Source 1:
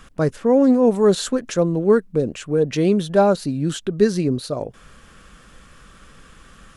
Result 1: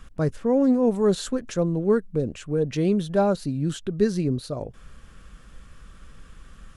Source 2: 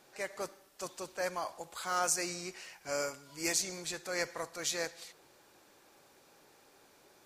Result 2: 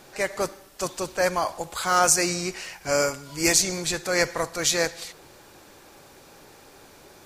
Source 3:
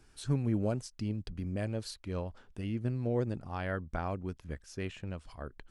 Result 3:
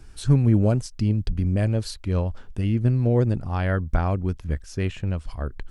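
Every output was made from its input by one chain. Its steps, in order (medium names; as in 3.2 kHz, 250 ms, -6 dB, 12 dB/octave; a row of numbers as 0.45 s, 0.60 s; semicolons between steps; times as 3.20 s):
bass shelf 120 Hz +12 dB; normalise loudness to -24 LUFS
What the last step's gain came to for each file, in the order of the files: -6.5 dB, +12.0 dB, +8.0 dB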